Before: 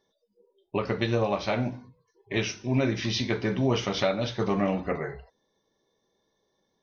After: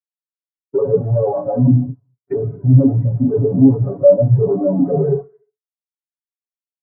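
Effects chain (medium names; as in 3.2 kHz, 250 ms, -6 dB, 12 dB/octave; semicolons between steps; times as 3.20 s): tracing distortion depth 0.27 ms; 1.78–4.38 s: bass shelf 290 Hz +5 dB; fuzz box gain 48 dB, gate -48 dBFS; high-pass 46 Hz; comb 7.2 ms, depth 88%; gated-style reverb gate 420 ms falling, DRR 11 dB; waveshaping leveller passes 2; low-pass that closes with the level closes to 1.1 kHz, closed at -6.5 dBFS; low-pass 2.4 kHz 12 dB/octave; bass shelf 62 Hz -7.5 dB; de-hum 108.5 Hz, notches 31; spectral contrast expander 2.5:1; trim -1 dB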